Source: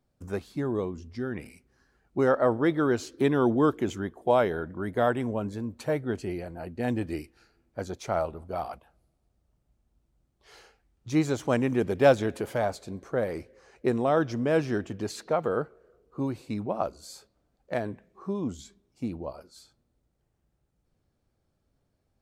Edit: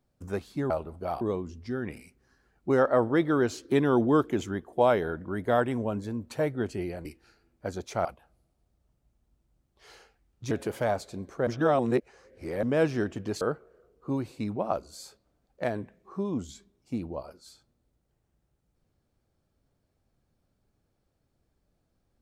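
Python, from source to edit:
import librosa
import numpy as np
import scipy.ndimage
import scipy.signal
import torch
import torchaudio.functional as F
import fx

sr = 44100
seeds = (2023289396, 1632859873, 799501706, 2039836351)

y = fx.edit(x, sr, fx.cut(start_s=6.54, length_s=0.64),
    fx.move(start_s=8.18, length_s=0.51, to_s=0.7),
    fx.cut(start_s=11.15, length_s=1.1),
    fx.reverse_span(start_s=13.21, length_s=1.16),
    fx.cut(start_s=15.15, length_s=0.36), tone=tone)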